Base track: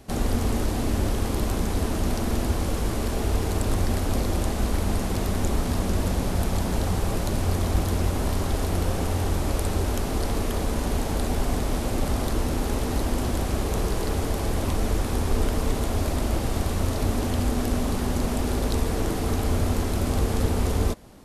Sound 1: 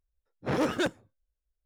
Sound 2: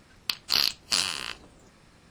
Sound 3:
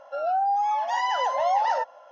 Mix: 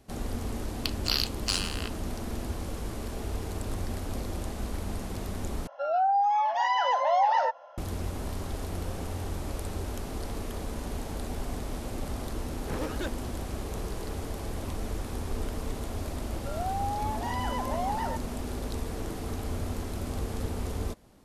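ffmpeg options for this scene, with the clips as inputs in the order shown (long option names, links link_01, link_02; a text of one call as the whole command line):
ffmpeg -i bed.wav -i cue0.wav -i cue1.wav -i cue2.wav -filter_complex "[3:a]asplit=2[link_01][link_02];[0:a]volume=-9.5dB[link_03];[link_01]highpass=230,lowpass=5500[link_04];[link_03]asplit=2[link_05][link_06];[link_05]atrim=end=5.674[link_07];[link_04]atrim=end=2.11,asetpts=PTS-STARTPTS,volume=-0.5dB[link_08];[link_06]atrim=start=7.776[link_09];[2:a]atrim=end=2.1,asetpts=PTS-STARTPTS,volume=-4.5dB,afade=type=in:duration=0.004:curve=hsin,afade=type=out:start_time=2.096:duration=0.004:curve=hsin,adelay=560[link_10];[1:a]atrim=end=1.65,asetpts=PTS-STARTPTS,volume=-8dB,afade=type=in:duration=0.004:curve=hsin,afade=type=out:start_time=1.646:duration=0.004:curve=hsin,adelay=12210[link_11];[link_02]atrim=end=2.11,asetpts=PTS-STARTPTS,volume=-9dB,afade=type=in:duration=0.004:curve=hsin,afade=type=out:start_time=2.106:duration=0.004:curve=hsin,adelay=16330[link_12];[link_07][link_08]acrossfade=duration=0.004:curve1=hsin:curve2=hsin[link_13];[link_13][link_09]acrossfade=duration=0.004:curve1=hsin:curve2=hsin[link_14];[link_14][link_10][link_11][link_12]amix=inputs=4:normalize=0" out.wav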